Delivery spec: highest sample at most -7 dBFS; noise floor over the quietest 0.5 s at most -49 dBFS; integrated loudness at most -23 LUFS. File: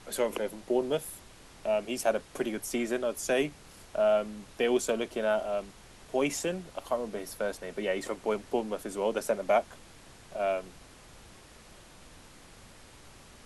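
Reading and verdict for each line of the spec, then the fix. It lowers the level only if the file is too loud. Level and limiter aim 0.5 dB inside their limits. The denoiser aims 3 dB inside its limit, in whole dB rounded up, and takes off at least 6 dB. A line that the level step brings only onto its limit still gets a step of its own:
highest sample -14.5 dBFS: OK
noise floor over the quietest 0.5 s -53 dBFS: OK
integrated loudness -31.0 LUFS: OK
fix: none

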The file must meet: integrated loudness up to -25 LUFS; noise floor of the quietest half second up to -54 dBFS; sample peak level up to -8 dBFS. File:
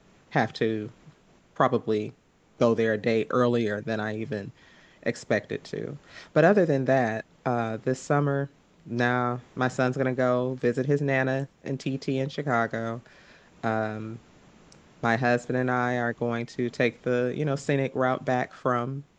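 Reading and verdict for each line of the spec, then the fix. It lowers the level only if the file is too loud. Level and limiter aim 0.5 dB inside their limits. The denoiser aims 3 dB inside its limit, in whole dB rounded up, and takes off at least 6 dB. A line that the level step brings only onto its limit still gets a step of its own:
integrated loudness -27.0 LUFS: OK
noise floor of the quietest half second -58 dBFS: OK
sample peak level -6.5 dBFS: fail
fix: limiter -8.5 dBFS

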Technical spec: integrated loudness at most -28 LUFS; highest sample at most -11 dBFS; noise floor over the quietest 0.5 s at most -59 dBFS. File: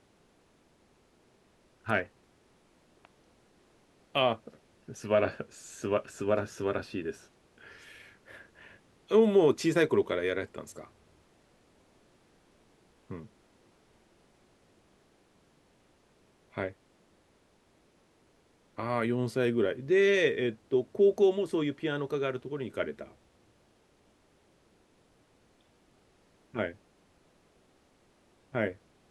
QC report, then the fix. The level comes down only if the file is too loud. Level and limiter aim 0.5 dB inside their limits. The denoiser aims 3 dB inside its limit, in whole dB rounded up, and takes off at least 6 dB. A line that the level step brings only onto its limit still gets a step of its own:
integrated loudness -29.5 LUFS: OK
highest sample -12.0 dBFS: OK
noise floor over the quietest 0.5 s -66 dBFS: OK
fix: none

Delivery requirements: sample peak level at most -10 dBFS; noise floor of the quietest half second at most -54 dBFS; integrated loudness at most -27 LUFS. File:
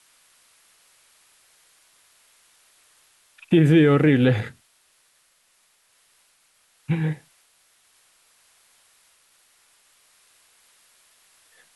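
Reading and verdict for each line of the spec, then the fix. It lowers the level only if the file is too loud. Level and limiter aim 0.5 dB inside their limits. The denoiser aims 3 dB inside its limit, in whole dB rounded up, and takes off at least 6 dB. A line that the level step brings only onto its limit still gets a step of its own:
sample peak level -6.5 dBFS: fail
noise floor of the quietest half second -63 dBFS: OK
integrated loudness -19.5 LUFS: fail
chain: gain -8 dB

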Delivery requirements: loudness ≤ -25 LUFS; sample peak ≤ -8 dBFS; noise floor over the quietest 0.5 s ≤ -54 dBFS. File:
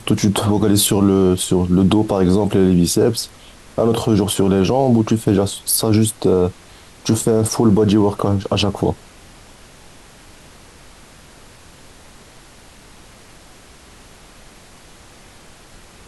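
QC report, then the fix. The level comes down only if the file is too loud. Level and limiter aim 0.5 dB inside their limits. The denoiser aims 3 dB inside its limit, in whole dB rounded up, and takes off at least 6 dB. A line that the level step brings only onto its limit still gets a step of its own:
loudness -16.0 LUFS: fail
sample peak -5.0 dBFS: fail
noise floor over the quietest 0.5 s -44 dBFS: fail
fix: denoiser 6 dB, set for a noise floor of -44 dBFS; gain -9.5 dB

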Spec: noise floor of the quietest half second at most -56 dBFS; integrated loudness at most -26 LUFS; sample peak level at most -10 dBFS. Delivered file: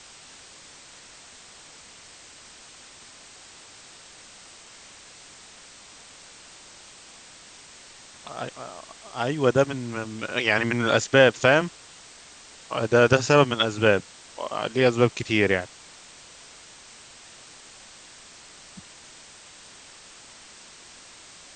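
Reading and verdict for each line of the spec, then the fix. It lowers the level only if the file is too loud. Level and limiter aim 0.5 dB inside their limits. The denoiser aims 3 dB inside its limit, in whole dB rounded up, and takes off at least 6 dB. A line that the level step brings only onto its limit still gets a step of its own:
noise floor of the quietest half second -48 dBFS: fail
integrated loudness -22.5 LUFS: fail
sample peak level -2.0 dBFS: fail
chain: denoiser 7 dB, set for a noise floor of -48 dBFS; gain -4 dB; limiter -10.5 dBFS

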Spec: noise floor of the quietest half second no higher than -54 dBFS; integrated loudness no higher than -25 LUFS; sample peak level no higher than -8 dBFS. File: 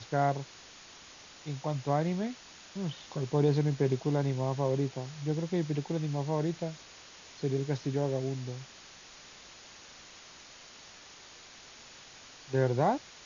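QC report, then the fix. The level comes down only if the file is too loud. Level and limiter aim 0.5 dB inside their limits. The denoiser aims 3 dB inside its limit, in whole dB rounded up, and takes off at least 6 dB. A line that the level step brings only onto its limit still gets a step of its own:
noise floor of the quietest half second -52 dBFS: fail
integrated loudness -32.0 LUFS: OK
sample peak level -15.0 dBFS: OK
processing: denoiser 6 dB, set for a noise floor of -52 dBFS

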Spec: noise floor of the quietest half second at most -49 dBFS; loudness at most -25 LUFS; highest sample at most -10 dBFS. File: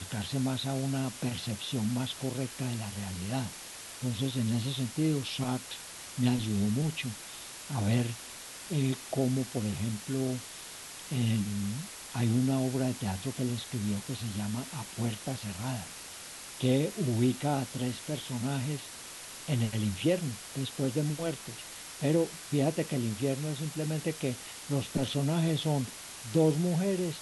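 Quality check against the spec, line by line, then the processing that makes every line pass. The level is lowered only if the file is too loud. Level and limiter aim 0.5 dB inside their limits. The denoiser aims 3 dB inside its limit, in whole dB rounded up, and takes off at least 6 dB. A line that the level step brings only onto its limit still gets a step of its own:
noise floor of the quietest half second -45 dBFS: fail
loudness -32.5 LUFS: OK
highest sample -14.0 dBFS: OK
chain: denoiser 7 dB, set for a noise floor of -45 dBFS

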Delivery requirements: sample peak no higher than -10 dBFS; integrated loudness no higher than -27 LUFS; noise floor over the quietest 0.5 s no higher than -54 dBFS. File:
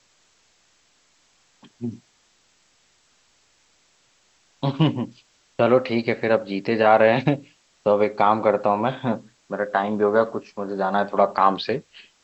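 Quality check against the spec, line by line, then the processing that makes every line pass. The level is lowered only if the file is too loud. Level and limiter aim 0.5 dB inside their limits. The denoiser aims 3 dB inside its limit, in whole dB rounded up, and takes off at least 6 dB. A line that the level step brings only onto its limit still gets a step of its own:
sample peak -4.0 dBFS: fail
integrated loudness -21.5 LUFS: fail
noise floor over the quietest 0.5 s -62 dBFS: OK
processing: gain -6 dB; limiter -10.5 dBFS

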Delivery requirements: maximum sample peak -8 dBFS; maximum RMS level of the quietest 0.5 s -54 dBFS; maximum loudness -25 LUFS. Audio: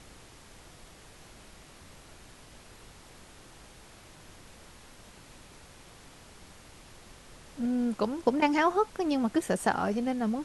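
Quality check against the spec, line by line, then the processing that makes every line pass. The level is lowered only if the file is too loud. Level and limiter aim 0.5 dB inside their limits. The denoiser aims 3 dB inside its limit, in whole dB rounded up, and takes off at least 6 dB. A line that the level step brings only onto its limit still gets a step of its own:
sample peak -11.0 dBFS: OK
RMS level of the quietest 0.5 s -52 dBFS: fail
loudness -28.5 LUFS: OK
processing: denoiser 6 dB, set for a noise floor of -52 dBFS

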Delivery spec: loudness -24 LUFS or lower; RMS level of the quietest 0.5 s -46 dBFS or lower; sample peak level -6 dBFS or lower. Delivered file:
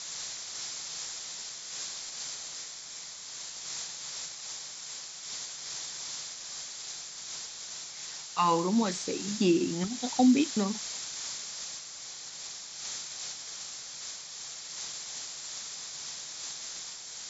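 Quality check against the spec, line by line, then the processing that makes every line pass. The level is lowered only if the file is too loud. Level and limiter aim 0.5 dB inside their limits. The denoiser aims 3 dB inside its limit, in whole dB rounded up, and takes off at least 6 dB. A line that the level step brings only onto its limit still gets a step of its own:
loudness -33.5 LUFS: OK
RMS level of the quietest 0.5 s -44 dBFS: fail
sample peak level -12.5 dBFS: OK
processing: denoiser 6 dB, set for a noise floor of -44 dBFS

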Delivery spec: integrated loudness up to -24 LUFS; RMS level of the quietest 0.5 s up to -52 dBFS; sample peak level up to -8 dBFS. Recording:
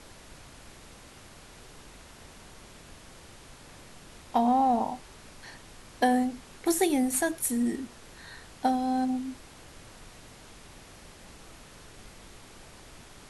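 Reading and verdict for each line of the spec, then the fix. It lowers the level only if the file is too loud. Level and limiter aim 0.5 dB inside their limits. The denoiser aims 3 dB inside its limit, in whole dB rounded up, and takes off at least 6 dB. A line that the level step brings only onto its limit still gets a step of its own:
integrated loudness -27.5 LUFS: OK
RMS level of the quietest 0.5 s -50 dBFS: fail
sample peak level -12.0 dBFS: OK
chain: denoiser 6 dB, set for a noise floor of -50 dBFS

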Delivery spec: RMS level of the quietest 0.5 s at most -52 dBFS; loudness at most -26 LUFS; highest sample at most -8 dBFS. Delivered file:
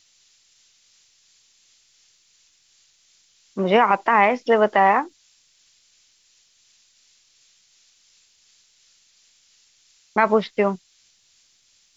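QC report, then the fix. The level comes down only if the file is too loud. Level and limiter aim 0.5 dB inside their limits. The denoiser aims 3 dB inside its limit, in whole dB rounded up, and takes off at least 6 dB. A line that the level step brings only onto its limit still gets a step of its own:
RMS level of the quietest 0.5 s -61 dBFS: OK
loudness -19.0 LUFS: fail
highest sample -5.0 dBFS: fail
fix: gain -7.5 dB

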